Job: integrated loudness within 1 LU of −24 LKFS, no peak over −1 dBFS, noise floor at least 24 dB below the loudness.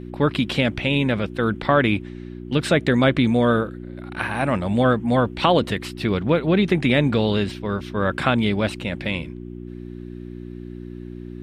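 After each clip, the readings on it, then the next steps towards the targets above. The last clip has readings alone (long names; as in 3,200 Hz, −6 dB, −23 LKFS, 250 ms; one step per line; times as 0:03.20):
mains hum 60 Hz; hum harmonics up to 360 Hz; level of the hum −31 dBFS; integrated loudness −21.0 LKFS; sample peak −4.0 dBFS; target loudness −24.0 LKFS
→ hum removal 60 Hz, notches 6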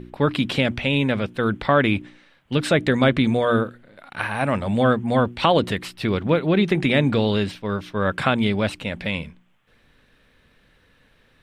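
mains hum none found; integrated loudness −21.5 LKFS; sample peak −4.0 dBFS; target loudness −24.0 LKFS
→ level −2.5 dB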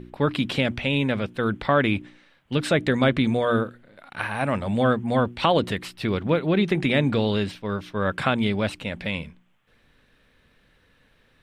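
integrated loudness −24.0 LKFS; sample peak −6.5 dBFS; background noise floor −62 dBFS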